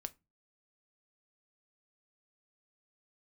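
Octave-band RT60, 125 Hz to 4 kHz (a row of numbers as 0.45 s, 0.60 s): 0.50 s, 0.40 s, 0.25 s, 0.25 s, 0.20 s, 0.15 s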